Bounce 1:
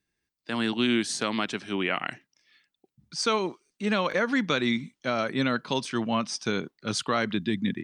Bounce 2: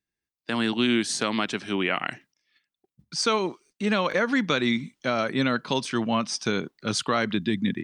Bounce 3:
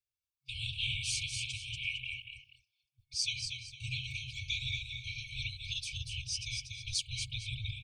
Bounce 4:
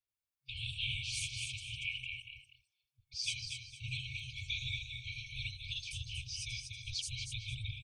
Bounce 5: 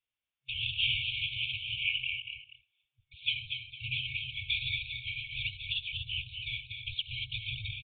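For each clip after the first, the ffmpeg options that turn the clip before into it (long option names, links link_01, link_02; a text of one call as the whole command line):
ffmpeg -i in.wav -filter_complex "[0:a]agate=range=-13dB:threshold=-58dB:ratio=16:detection=peak,asplit=2[link_01][link_02];[link_02]acompressor=threshold=-33dB:ratio=6,volume=-2dB[link_03];[link_01][link_03]amix=inputs=2:normalize=0" out.wav
ffmpeg -i in.wav -af "aecho=1:1:238|458:0.531|0.15,afftfilt=real='hypot(re,im)*cos(2*PI*random(0))':imag='hypot(re,im)*sin(2*PI*random(1))':win_size=512:overlap=0.75,afftfilt=real='re*(1-between(b*sr/4096,130,2200))':imag='im*(1-between(b*sr/4096,130,2200))':win_size=4096:overlap=0.75" out.wav
ffmpeg -i in.wav -filter_complex "[0:a]acrossover=split=5700[link_01][link_02];[link_02]adelay=80[link_03];[link_01][link_03]amix=inputs=2:normalize=0,volume=-2dB" out.wav
ffmpeg -i in.wav -af "equalizer=frequency=2900:width=1.5:gain=10,aresample=8000,aresample=44100" out.wav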